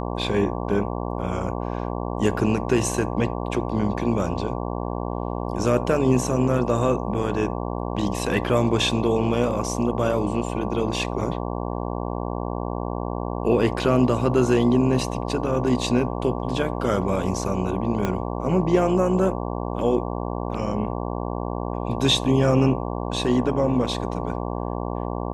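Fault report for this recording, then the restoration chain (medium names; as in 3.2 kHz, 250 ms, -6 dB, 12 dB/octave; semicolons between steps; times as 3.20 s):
buzz 60 Hz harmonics 19 -28 dBFS
18.05 s: pop -11 dBFS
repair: de-click; de-hum 60 Hz, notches 19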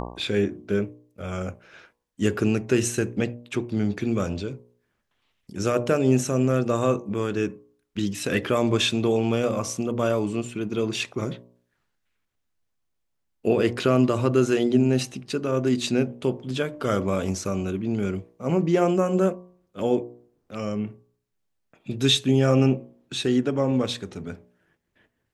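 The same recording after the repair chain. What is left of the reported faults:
18.05 s: pop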